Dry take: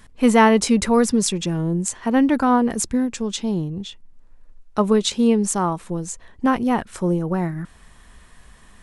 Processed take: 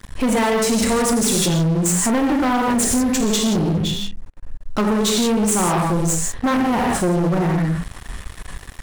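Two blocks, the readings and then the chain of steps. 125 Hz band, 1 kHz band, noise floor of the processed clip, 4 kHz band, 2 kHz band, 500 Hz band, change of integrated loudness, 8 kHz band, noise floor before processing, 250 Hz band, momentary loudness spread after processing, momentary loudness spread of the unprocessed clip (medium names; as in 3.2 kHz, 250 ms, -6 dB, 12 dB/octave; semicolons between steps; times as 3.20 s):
+5.5 dB, +0.5 dB, -39 dBFS, +5.0 dB, +2.0 dB, +0.5 dB, +1.5 dB, +6.5 dB, -49 dBFS, +1.0 dB, 12 LU, 13 LU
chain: bass shelf 160 Hz +5 dB; hum notches 50/100/150/200 Hz; gated-style reverb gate 200 ms flat, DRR 0 dB; compression 12:1, threshold -18 dBFS, peak gain reduction 12.5 dB; dynamic bell 9.1 kHz, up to +4 dB, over -43 dBFS, Q 1; waveshaping leveller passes 5; trim -8.5 dB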